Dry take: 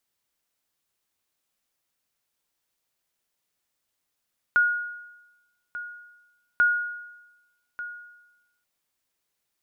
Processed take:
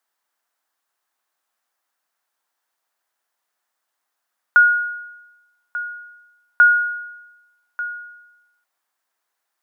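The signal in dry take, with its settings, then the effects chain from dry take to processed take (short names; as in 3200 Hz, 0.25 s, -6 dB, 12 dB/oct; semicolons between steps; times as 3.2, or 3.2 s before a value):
sonar ping 1440 Hz, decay 1.03 s, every 2.04 s, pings 2, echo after 1.19 s, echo -15 dB -14 dBFS
HPF 290 Hz 12 dB/oct; band shelf 1100 Hz +9 dB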